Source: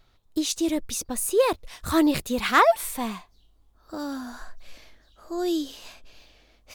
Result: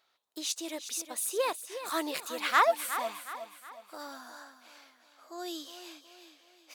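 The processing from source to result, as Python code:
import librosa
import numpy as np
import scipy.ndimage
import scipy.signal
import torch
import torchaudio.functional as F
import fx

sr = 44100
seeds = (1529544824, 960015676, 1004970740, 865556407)

y = scipy.signal.sosfilt(scipy.signal.butter(2, 620.0, 'highpass', fs=sr, output='sos'), x)
y = fx.echo_feedback(y, sr, ms=365, feedback_pct=43, wet_db=-11)
y = y * 10.0 ** (-5.0 / 20.0)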